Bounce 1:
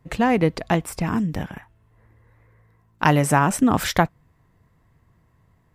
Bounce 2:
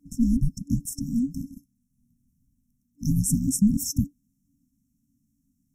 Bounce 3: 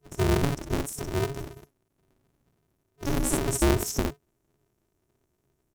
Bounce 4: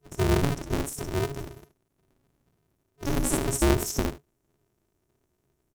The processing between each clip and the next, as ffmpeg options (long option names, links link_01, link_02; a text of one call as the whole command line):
ffmpeg -i in.wav -af "aeval=exprs='val(0)*sin(2*PI*460*n/s)':channel_layout=same,afftfilt=real='re*(1-between(b*sr/4096,280,5300))':imag='im*(1-between(b*sr/4096,280,5300))':win_size=4096:overlap=0.75,volume=4.5dB" out.wav
ffmpeg -i in.wav -af "aecho=1:1:53|63:0.316|0.596,aeval=exprs='val(0)*sgn(sin(2*PI*140*n/s))':channel_layout=same,volume=-4dB" out.wav
ffmpeg -i in.wav -af "aecho=1:1:75:0.168" out.wav